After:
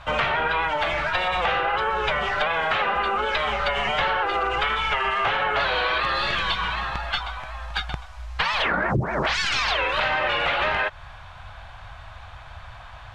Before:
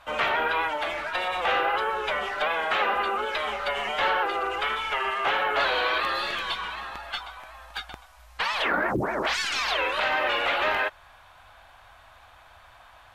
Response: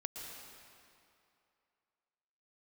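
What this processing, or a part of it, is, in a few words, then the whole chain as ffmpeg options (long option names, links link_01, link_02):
jukebox: -af "lowpass=6200,lowshelf=frequency=200:width_type=q:width=1.5:gain=9.5,acompressor=threshold=-28dB:ratio=6,volume=8dB"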